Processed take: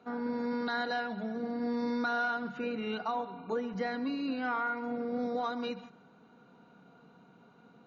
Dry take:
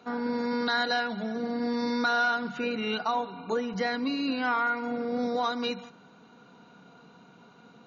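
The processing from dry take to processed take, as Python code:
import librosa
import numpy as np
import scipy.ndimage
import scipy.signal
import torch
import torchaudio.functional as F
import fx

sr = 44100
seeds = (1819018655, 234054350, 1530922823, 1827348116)

p1 = fx.high_shelf(x, sr, hz=2700.0, db=-10.5)
p2 = fx.notch(p1, sr, hz=1000.0, q=26.0)
p3 = p2 + fx.echo_single(p2, sr, ms=134, db=-17.5, dry=0)
y = F.gain(torch.from_numpy(p3), -4.0).numpy()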